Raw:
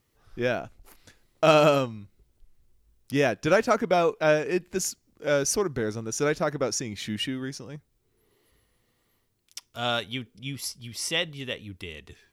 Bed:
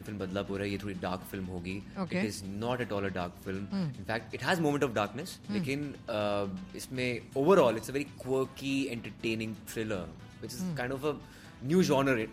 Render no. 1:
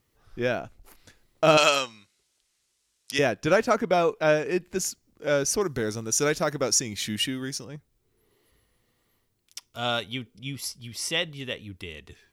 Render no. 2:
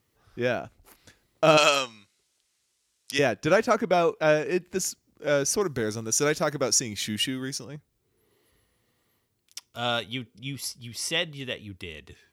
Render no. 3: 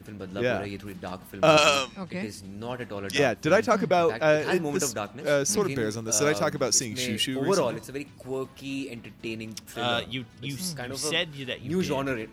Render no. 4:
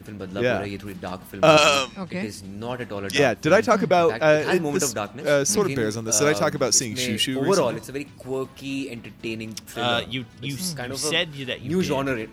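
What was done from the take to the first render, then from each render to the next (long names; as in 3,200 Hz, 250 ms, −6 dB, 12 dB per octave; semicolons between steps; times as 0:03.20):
0:01.57–0:03.19: meter weighting curve ITU-R 468; 0:05.61–0:07.65: high-shelf EQ 4,000 Hz +11 dB; 0:09.64–0:10.63: notch filter 1,700 Hz, Q 11
high-pass filter 55 Hz
mix in bed −1.5 dB
level +4 dB; brickwall limiter −3 dBFS, peak gain reduction 2 dB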